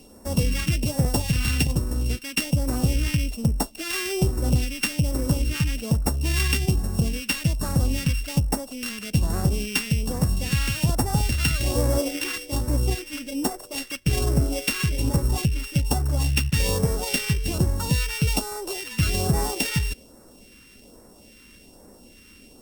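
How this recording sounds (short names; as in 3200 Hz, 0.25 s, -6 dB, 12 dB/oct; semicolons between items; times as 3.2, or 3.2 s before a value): a buzz of ramps at a fixed pitch in blocks of 16 samples; phasing stages 2, 1.2 Hz, lowest notch 650–2700 Hz; Opus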